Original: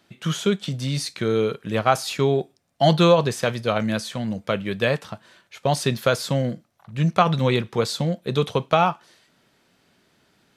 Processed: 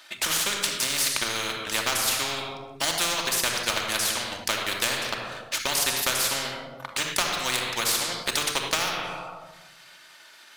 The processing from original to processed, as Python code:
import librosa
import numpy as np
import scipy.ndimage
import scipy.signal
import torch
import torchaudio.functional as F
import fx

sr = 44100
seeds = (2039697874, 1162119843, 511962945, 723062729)

y = scipy.signal.sosfilt(scipy.signal.butter(2, 1100.0, 'highpass', fs=sr, output='sos'), x)
y = fx.leveller(y, sr, passes=1)
y = fx.transient(y, sr, attack_db=6, sustain_db=-9)
y = fx.room_shoebox(y, sr, seeds[0], volume_m3=3600.0, walls='furnished', distance_m=2.6)
y = fx.spectral_comp(y, sr, ratio=4.0)
y = y * 10.0 ** (-4.0 / 20.0)